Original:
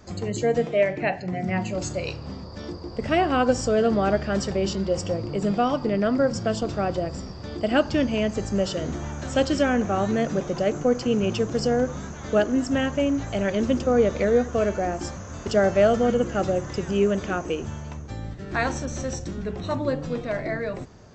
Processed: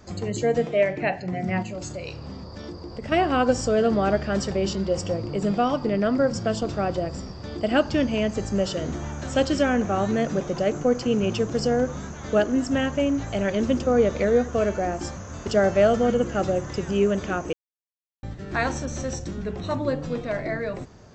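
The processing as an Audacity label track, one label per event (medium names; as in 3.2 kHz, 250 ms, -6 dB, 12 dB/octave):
1.620000	3.120000	compression 2:1, threshold -33 dBFS
17.530000	18.230000	mute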